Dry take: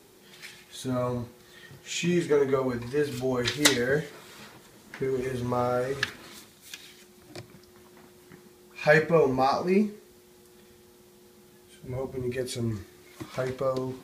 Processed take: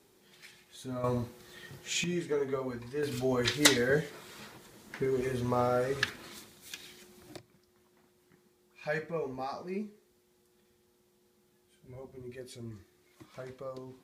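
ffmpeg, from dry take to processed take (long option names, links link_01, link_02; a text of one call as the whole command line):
ffmpeg -i in.wav -af "asetnsamples=nb_out_samples=441:pad=0,asendcmd='1.04 volume volume -0.5dB;2.04 volume volume -8.5dB;3.03 volume volume -2dB;7.37 volume volume -14dB',volume=-9dB" out.wav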